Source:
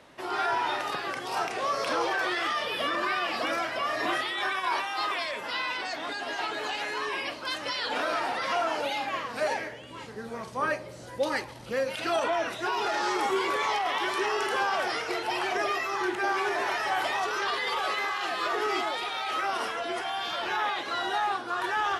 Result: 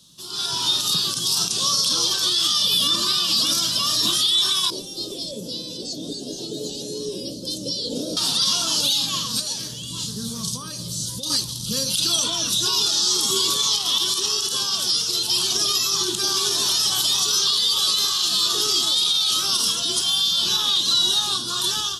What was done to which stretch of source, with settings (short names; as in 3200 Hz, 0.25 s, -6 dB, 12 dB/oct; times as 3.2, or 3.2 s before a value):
4.7–8.17 EQ curve 120 Hz 0 dB, 540 Hz +11 dB, 1100 Hz -27 dB, 3600 Hz -18 dB, 5800 Hz -13 dB
9.39–11.3 compressor, threshold -33 dBFS
whole clip: EQ curve 100 Hz 0 dB, 170 Hz +8 dB, 260 Hz -5 dB, 770 Hz -24 dB, 1100 Hz -11 dB, 2100 Hz -26 dB, 3400 Hz +10 dB, 5900 Hz +15 dB; AGC gain up to 12 dB; limiter -10.5 dBFS